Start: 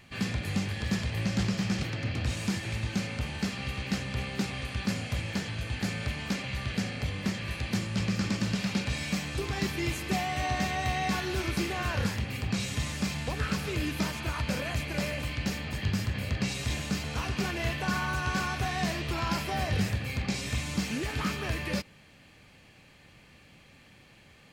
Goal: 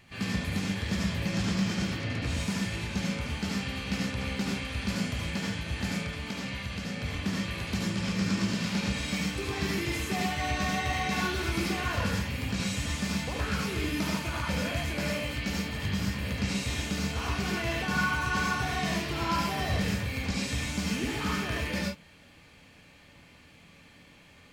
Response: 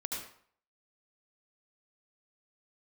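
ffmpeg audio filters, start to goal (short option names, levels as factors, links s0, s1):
-filter_complex "[0:a]asettb=1/sr,asplit=3[s0][s1][s2];[s0]atrim=end=5.894[s3];[s1]atrim=start=5.89:end=7.04,asetpts=PTS-STARTPTS,afade=t=in:d=0.004:c=qsin,afade=t=out:st=1.146:d=0.004:c=qsin,acompressor=threshold=0.0224:ratio=2.5[s4];[s2]atrim=start=7.036[s5];[s3][s4]acrossfade=d=0.004:c1=hsin:c2=qsin[s6];[s6][s5]acrossfade=d=0.004:c1=qsin:c2=hsin[s7];[1:a]atrim=start_sample=2205,atrim=end_sample=6174[s8];[s7][s8]afir=irnorm=-1:irlink=0"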